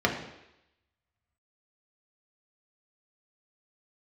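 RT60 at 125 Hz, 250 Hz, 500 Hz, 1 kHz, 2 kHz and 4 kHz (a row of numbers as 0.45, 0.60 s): 0.70, 0.80, 0.85, 0.85, 0.90, 0.95 s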